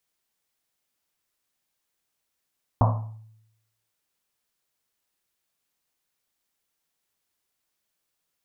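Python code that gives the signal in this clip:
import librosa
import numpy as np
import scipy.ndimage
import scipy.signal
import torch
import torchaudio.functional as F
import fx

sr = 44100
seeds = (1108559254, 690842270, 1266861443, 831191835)

y = fx.risset_drum(sr, seeds[0], length_s=1.1, hz=110.0, decay_s=0.87, noise_hz=830.0, noise_width_hz=550.0, noise_pct=30)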